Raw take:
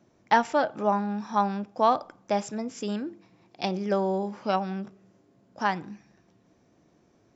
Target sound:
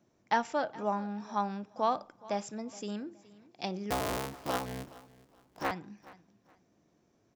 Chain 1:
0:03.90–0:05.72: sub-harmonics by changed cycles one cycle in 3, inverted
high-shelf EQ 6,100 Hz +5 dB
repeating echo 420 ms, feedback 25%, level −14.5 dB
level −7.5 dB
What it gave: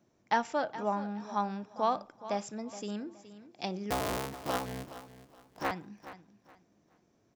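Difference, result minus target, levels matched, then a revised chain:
echo-to-direct +6 dB
0:03.90–0:05.72: sub-harmonics by changed cycles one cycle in 3, inverted
high-shelf EQ 6,100 Hz +5 dB
repeating echo 420 ms, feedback 25%, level −20.5 dB
level −7.5 dB

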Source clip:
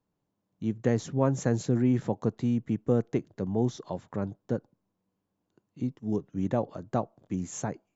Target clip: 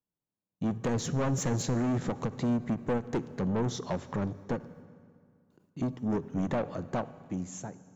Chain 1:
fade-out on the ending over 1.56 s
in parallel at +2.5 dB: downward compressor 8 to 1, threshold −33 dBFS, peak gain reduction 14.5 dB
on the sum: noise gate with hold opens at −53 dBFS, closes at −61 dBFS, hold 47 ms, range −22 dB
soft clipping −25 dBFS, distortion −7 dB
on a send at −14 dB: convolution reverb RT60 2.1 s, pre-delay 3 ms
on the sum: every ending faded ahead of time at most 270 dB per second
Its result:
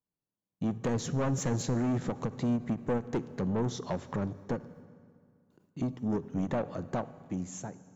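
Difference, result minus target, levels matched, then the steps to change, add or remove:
downward compressor: peak gain reduction +6.5 dB
change: downward compressor 8 to 1, threshold −25.5 dBFS, peak gain reduction 8 dB

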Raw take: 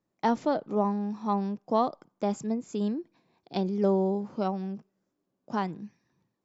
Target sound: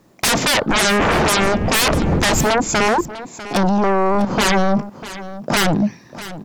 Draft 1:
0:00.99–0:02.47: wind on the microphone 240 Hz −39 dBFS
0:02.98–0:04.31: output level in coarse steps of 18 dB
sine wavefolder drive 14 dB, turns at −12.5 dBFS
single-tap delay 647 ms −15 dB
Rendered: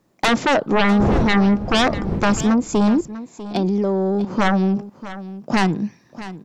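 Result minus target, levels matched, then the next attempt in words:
sine wavefolder: distortion −21 dB
0:00.99–0:02.47: wind on the microphone 240 Hz −39 dBFS
0:02.98–0:04.31: output level in coarse steps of 18 dB
sine wavefolder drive 24 dB, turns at −12.5 dBFS
single-tap delay 647 ms −15 dB

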